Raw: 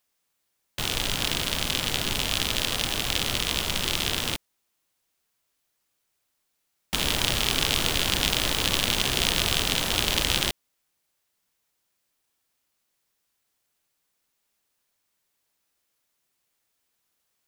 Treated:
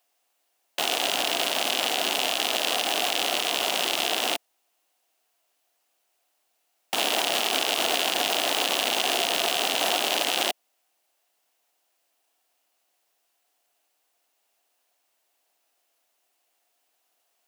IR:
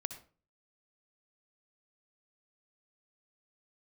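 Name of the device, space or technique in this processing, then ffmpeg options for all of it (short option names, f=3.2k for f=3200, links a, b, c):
laptop speaker: -af "highpass=f=270:w=0.5412,highpass=f=270:w=1.3066,equalizer=f=710:t=o:w=0.47:g=12,equalizer=f=2.8k:t=o:w=0.22:g=4.5,alimiter=limit=-11dB:level=0:latency=1:release=33,volume=2.5dB"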